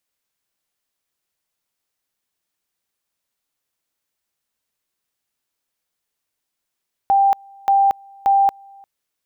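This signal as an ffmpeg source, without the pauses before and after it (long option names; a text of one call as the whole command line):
ffmpeg -f lavfi -i "aevalsrc='pow(10,(-11-29.5*gte(mod(t,0.58),0.23))/20)*sin(2*PI*790*t)':duration=1.74:sample_rate=44100" out.wav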